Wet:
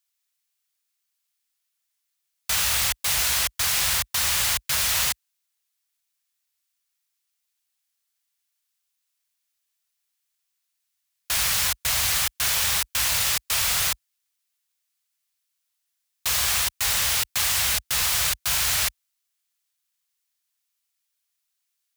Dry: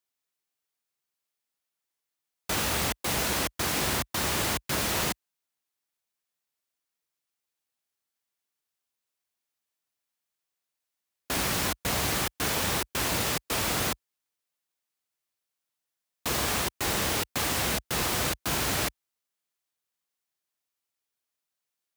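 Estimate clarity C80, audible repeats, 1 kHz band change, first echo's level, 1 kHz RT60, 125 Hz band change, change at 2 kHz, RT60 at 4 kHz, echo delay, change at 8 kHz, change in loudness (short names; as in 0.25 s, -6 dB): none, none, -1.0 dB, none, none, -3.5 dB, +4.0 dB, none, none, +8.0 dB, +6.5 dB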